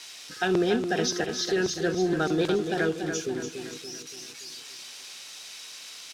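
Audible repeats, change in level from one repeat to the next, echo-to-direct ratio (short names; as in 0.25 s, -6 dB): 5, -6.0 dB, -6.0 dB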